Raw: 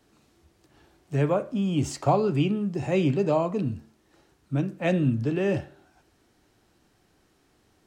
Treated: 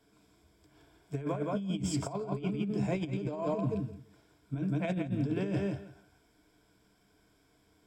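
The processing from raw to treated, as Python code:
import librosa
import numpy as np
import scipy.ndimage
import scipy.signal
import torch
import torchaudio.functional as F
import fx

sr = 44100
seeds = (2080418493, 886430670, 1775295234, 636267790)

p1 = fx.ripple_eq(x, sr, per_octave=1.7, db=11)
p2 = p1 + fx.echo_feedback(p1, sr, ms=169, feedback_pct=15, wet_db=-5, dry=0)
p3 = fx.over_compress(p2, sr, threshold_db=-23.0, ratio=-0.5)
y = p3 * 10.0 ** (-8.5 / 20.0)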